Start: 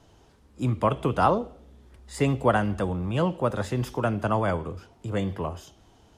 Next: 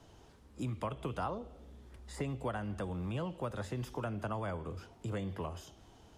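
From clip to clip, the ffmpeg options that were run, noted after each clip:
ffmpeg -i in.wav -filter_complex "[0:a]acrossover=split=88|1700[link_01][link_02][link_03];[link_01]acompressor=threshold=-46dB:ratio=4[link_04];[link_02]acompressor=threshold=-36dB:ratio=4[link_05];[link_03]acompressor=threshold=-50dB:ratio=4[link_06];[link_04][link_05][link_06]amix=inputs=3:normalize=0,volume=-2dB" out.wav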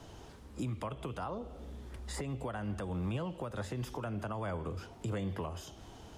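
ffmpeg -i in.wav -af "alimiter=level_in=12dB:limit=-24dB:level=0:latency=1:release=382,volume=-12dB,volume=7.5dB" out.wav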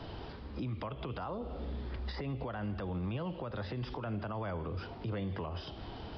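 ffmpeg -i in.wav -af "alimiter=level_in=13dB:limit=-24dB:level=0:latency=1:release=161,volume=-13dB,aresample=11025,aresample=44100,volume=7dB" out.wav

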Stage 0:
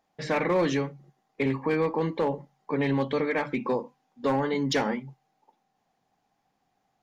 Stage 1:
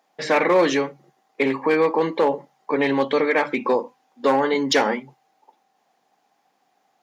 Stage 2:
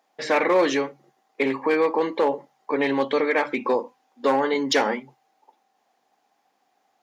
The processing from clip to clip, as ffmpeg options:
ffmpeg -i in.wav -af "highpass=320,volume=8.5dB" out.wav
ffmpeg -i in.wav -af "equalizer=frequency=160:width=4.4:gain=-9.5,volume=-2dB" out.wav

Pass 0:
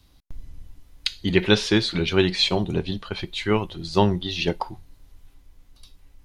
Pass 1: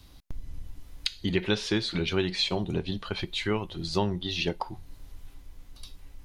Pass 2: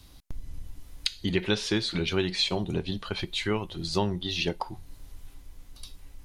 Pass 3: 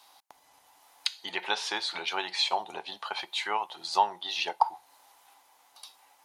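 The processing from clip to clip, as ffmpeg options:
ffmpeg -i in.wav -af "acompressor=threshold=-38dB:ratio=2,volume=4.5dB" out.wav
ffmpeg -i in.wav -af "equalizer=frequency=9800:width_type=o:width=1.4:gain=4.5" out.wav
ffmpeg -i in.wav -af "highpass=frequency=830:width_type=q:width=4.9,volume=-1.5dB" out.wav

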